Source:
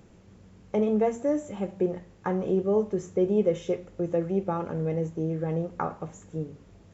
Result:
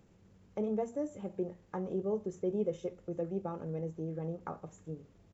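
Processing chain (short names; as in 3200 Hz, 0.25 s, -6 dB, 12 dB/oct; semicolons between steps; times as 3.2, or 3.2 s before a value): dynamic EQ 2100 Hz, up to -5 dB, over -46 dBFS, Q 0.85; tempo 1.3×; gain -9 dB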